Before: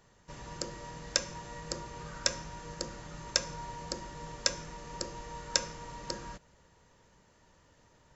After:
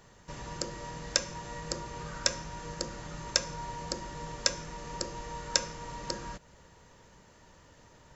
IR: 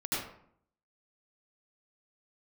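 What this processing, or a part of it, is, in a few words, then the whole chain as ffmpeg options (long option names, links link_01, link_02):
parallel compression: -filter_complex "[0:a]asplit=2[link_01][link_02];[link_02]acompressor=threshold=-50dB:ratio=6,volume=-1.5dB[link_03];[link_01][link_03]amix=inputs=2:normalize=0,volume=1dB"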